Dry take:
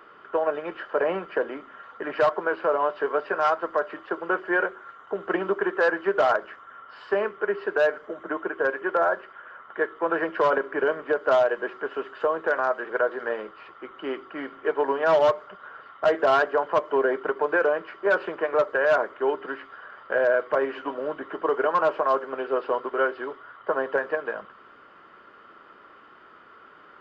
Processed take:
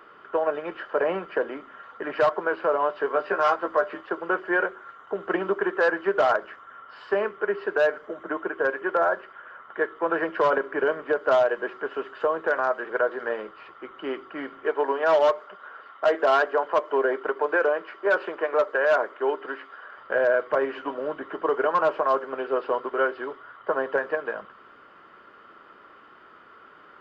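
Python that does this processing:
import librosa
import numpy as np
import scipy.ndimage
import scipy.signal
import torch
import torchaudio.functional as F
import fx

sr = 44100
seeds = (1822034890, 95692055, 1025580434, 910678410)

y = fx.doubler(x, sr, ms=15.0, db=-4, at=(3.13, 4.01))
y = fx.highpass(y, sr, hz=270.0, slope=12, at=(14.66, 19.98))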